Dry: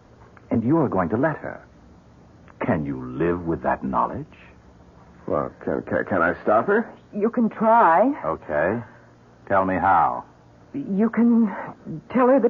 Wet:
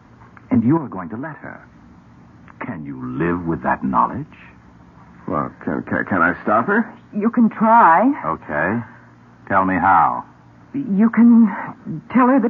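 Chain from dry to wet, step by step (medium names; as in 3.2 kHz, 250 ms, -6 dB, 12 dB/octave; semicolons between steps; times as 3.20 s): ten-band graphic EQ 125 Hz +5 dB, 250 Hz +8 dB, 500 Hz -6 dB, 1 kHz +7 dB, 2 kHz +7 dB; 0.77–3.03 s: compression 4:1, threshold -26 dBFS, peak gain reduction 13.5 dB; trim -1 dB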